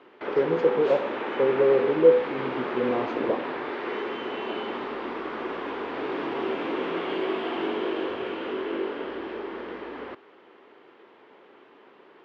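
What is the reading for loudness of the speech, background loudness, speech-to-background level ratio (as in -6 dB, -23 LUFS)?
-24.0 LUFS, -31.5 LUFS, 7.5 dB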